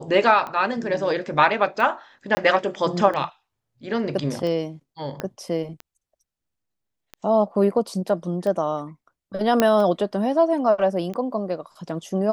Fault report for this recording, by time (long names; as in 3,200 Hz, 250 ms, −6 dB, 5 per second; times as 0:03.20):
scratch tick 45 rpm −19 dBFS
0:02.35–0:02.37: drop-out 20 ms
0:05.20: click −14 dBFS
0:09.60: click −4 dBFS